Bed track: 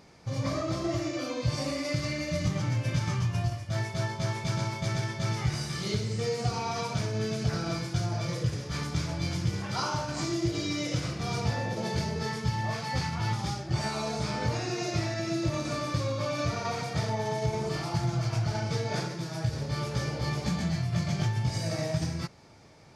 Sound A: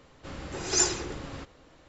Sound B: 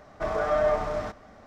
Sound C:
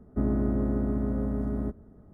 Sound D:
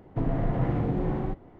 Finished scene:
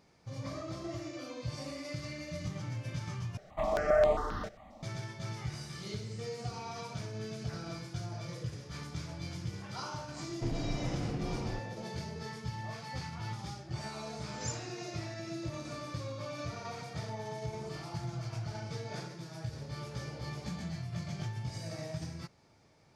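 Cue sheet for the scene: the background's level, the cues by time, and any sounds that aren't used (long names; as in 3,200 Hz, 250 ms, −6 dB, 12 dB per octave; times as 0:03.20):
bed track −10 dB
0:03.37: overwrite with B −0.5 dB + step-sequenced phaser 7.5 Hz 270–5,500 Hz
0:10.25: mix in D −9 dB + variable-slope delta modulation 16 kbit/s
0:13.68: mix in A −17.5 dB + Butterworth high-pass 920 Hz
not used: C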